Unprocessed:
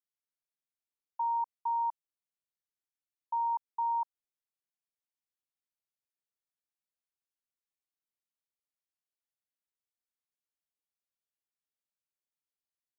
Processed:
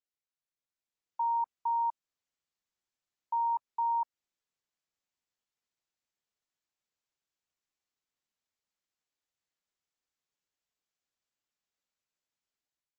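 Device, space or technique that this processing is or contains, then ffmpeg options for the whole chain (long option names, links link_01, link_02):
low-bitrate web radio: -af "dynaudnorm=framelen=630:gausssize=3:maxgain=8dB,alimiter=limit=-22.5dB:level=0:latency=1:release=222,volume=-3dB" -ar 32000 -c:a libmp3lame -b:a 32k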